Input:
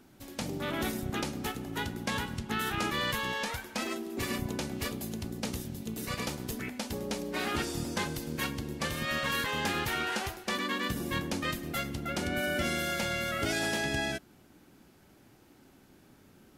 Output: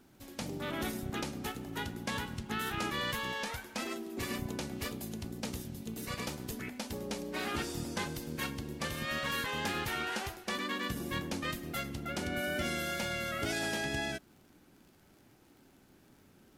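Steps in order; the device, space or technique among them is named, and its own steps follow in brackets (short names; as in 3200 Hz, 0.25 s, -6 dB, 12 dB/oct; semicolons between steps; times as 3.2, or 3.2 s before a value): vinyl LP (wow and flutter 16 cents; crackle 39/s -48 dBFS; pink noise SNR 40 dB); gain -3.5 dB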